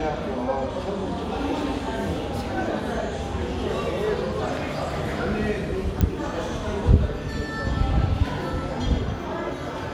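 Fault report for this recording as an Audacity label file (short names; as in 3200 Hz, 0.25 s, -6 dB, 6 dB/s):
6.010000	6.010000	pop -9 dBFS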